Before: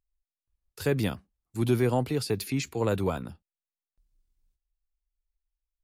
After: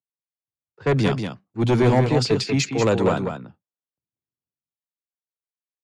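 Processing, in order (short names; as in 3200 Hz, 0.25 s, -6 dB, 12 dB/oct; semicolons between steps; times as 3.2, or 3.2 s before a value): low-pass opened by the level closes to 930 Hz, open at -22.5 dBFS; elliptic band-pass 120–7100 Hz, stop band 50 dB; sine folder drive 6 dB, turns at -13 dBFS; on a send: echo 0.19 s -5.5 dB; on the sum: three-band expander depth 40%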